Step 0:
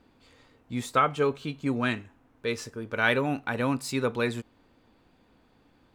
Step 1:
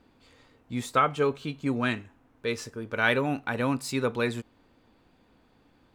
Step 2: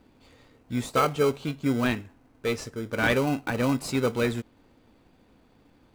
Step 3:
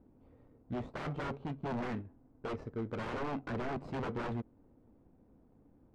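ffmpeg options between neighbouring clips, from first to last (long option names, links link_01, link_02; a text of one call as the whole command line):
ffmpeg -i in.wav -af anull out.wav
ffmpeg -i in.wav -filter_complex "[0:a]asplit=2[link_01][link_02];[link_02]acrusher=samples=25:mix=1:aa=0.000001,volume=-5.5dB[link_03];[link_01][link_03]amix=inputs=2:normalize=0,asoftclip=type=tanh:threshold=-11dB" out.wav
ffmpeg -i in.wav -af "aeval=exprs='0.0447*(abs(mod(val(0)/0.0447+3,4)-2)-1)':channel_layout=same,adynamicsmooth=sensitivity=2:basefreq=710,volume=-3dB" out.wav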